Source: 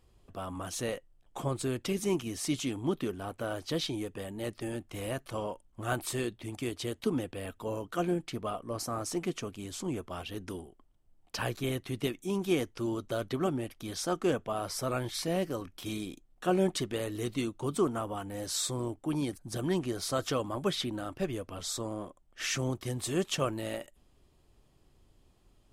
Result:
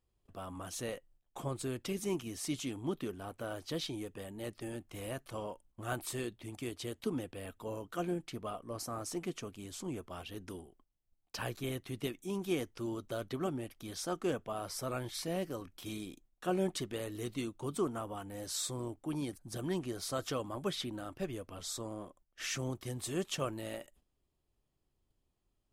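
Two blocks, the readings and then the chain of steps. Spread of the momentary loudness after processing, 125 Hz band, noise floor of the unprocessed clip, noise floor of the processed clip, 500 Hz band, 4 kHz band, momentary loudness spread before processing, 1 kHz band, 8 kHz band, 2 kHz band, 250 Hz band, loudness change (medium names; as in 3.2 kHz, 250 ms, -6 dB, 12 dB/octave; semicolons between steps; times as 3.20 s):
8 LU, -5.5 dB, -66 dBFS, -81 dBFS, -5.5 dB, -5.0 dB, 8 LU, -5.5 dB, -4.5 dB, -5.5 dB, -5.5 dB, -5.5 dB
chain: gate -58 dBFS, range -11 dB; treble shelf 12 kHz +5 dB; trim -5.5 dB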